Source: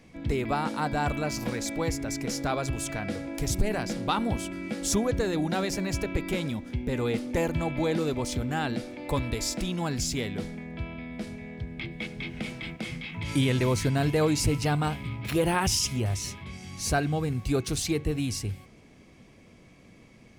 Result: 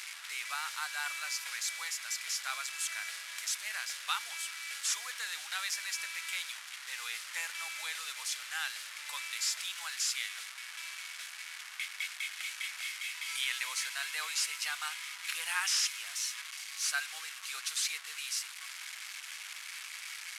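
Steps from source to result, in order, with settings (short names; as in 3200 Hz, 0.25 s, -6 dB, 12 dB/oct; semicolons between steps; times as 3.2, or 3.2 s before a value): delta modulation 64 kbps, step -32.5 dBFS; HPF 1400 Hz 24 dB/oct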